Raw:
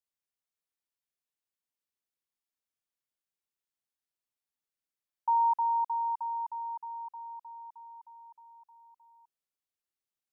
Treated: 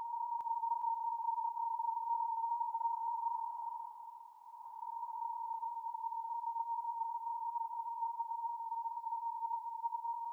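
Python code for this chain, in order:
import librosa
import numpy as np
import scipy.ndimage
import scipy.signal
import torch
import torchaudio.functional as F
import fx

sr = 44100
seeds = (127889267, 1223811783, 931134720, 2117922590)

p1 = fx.paulstretch(x, sr, seeds[0], factor=27.0, window_s=0.05, from_s=7.89)
p2 = p1 + fx.echo_feedback(p1, sr, ms=408, feedback_pct=37, wet_db=-3.0, dry=0)
y = p2 * 10.0 ** (9.0 / 20.0)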